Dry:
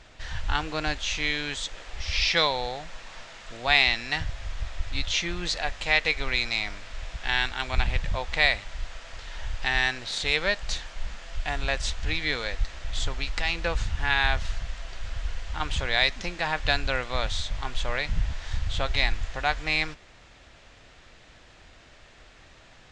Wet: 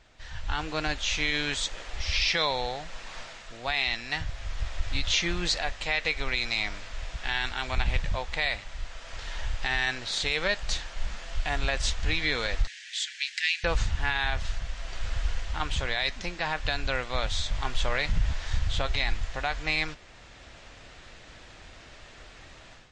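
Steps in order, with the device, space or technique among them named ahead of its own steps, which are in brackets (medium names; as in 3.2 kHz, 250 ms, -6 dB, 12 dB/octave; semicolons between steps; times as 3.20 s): 12.67–13.64 s: steep high-pass 1.6 kHz 96 dB/octave; low-bitrate web radio (level rider gain up to 11 dB; peak limiter -7.5 dBFS, peak gain reduction 6.5 dB; trim -7 dB; MP3 40 kbps 24 kHz)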